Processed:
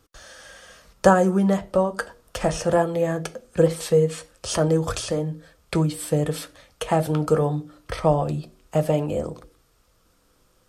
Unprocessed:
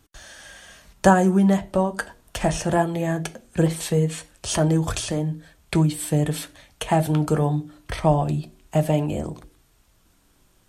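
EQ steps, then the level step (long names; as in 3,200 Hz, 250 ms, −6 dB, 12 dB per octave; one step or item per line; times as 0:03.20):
thirty-one-band graphic EQ 500 Hz +12 dB, 1,250 Hz +8 dB, 5,000 Hz +5 dB
−3.0 dB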